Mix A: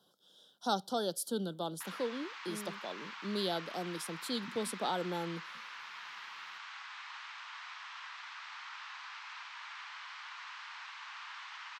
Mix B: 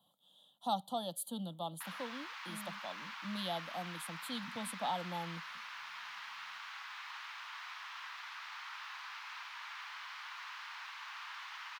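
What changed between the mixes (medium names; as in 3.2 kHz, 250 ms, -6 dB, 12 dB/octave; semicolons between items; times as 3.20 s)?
speech: add static phaser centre 1.5 kHz, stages 6; background: remove brick-wall FIR low-pass 8.6 kHz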